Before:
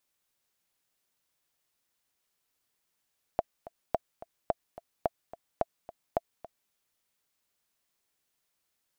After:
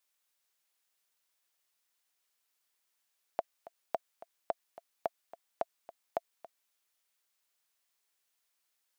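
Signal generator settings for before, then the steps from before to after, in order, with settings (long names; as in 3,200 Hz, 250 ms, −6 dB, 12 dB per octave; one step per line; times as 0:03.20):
click track 216 BPM, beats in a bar 2, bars 6, 673 Hz, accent 17.5 dB −12.5 dBFS
high-pass filter 810 Hz 6 dB per octave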